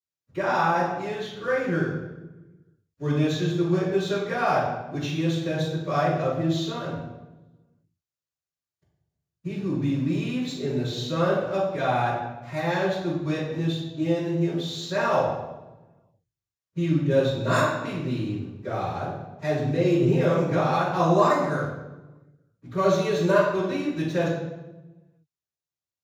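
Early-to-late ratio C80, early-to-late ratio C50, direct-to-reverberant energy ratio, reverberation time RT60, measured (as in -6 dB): 4.0 dB, 1.0 dB, -19.0 dB, 1.1 s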